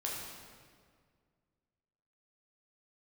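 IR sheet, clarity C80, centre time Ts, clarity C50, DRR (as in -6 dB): 2.0 dB, 91 ms, 0.5 dB, -4.0 dB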